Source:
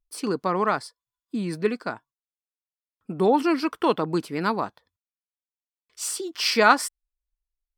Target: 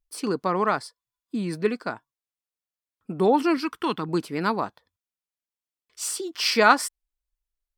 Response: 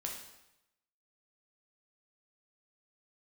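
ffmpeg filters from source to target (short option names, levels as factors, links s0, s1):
-filter_complex "[0:a]asettb=1/sr,asplit=3[s0][s1][s2];[s0]atrim=end=3.574[s3];[s1]atrim=start=3.57:end=4.09,asetpts=PTS-STARTPTS,afade=t=in:d=0.004:c=qsin,afade=t=out:st=0.516:d=0.004:c=qsin,equalizer=f=580:w=1.7:g=-14[s4];[s2]atrim=start=4.086[s5];[s3][s4]acrossfade=d=0.004:c1=hsin:c2=qsin[s6];[s6][s5]acrossfade=d=0.004:c1=qsin:c2=hsin"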